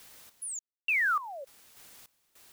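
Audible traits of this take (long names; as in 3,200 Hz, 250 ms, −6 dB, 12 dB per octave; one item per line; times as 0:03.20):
a quantiser's noise floor 10 bits, dither triangular
sample-and-hold tremolo 3.4 Hz, depth 100%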